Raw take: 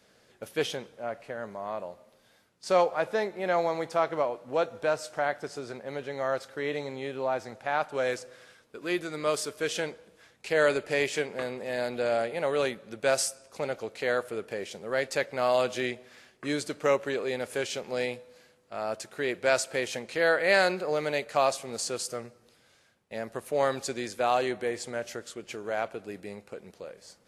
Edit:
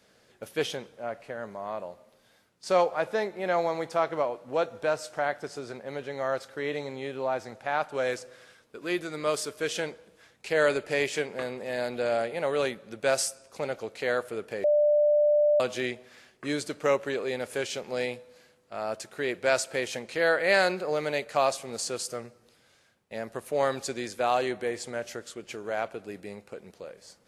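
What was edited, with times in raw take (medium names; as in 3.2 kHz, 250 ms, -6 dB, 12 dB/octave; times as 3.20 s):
14.64–15.60 s: bleep 593 Hz -18.5 dBFS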